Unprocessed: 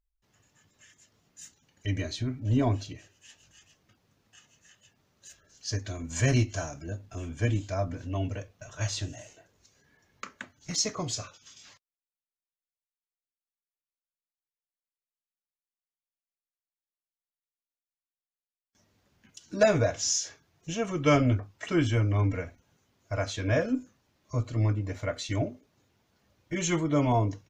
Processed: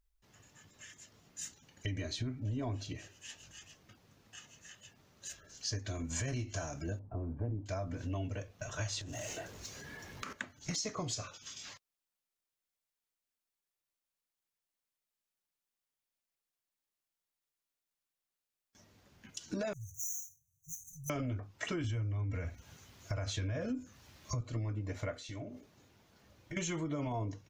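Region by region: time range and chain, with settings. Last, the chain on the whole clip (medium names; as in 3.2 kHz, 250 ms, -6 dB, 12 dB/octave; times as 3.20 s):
6.99–7.66 s: Chebyshev low-pass 950 Hz, order 3 + loudspeaker Doppler distortion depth 0.2 ms
9.01–10.33 s: power-law waveshaper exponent 0.7 + compression 10:1, threshold -41 dBFS
19.73–21.10 s: median filter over 5 samples + brick-wall FIR band-stop 150–5800 Hz + pre-emphasis filter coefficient 0.8
21.84–24.41 s: peaking EQ 64 Hz +11.5 dB 2.4 oct + tape noise reduction on one side only encoder only
25.15–26.57 s: compression 5:1, threshold -46 dBFS + flutter echo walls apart 7.6 m, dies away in 0.2 s
whole clip: peak limiter -21.5 dBFS; compression 4:1, threshold -41 dBFS; trim +4.5 dB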